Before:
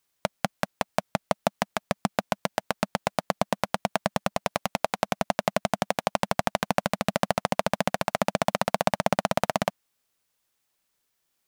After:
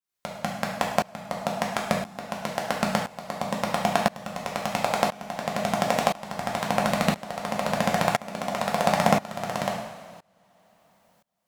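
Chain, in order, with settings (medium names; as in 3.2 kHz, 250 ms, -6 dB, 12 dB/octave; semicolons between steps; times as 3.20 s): two-slope reverb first 0.77 s, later 3.4 s, from -21 dB, DRR -1 dB; tremolo saw up 0.98 Hz, depth 95%; trim +2.5 dB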